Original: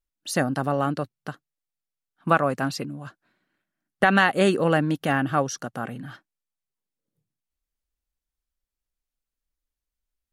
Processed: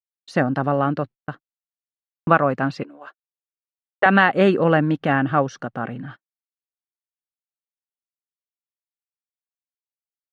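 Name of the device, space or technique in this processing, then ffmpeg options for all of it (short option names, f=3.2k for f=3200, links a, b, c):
hearing-loss simulation: -filter_complex "[0:a]agate=range=-30dB:threshold=-39dB:ratio=16:detection=peak,asettb=1/sr,asplit=3[a][b][c];[a]atrim=end=2.834[d];[b]atrim=start=2.83:end=4.06,asetpts=PTS-STARTPTS,afade=t=in:d=0.004:c=qsin,afade=t=out:st=1.226:d=0.004:c=qsin,highpass=f=400:w=0.5412,highpass=f=400:w=1.3066[e];[c]atrim=start=4.056[f];[d][e]acrossfade=d=0.004:c1=hsin:c2=qsin[g];[g][f]acrossfade=d=0.004:c1=qsin:c2=hsin,lowpass=2.6k,agate=range=-33dB:threshold=-44dB:ratio=3:detection=peak,volume=4dB"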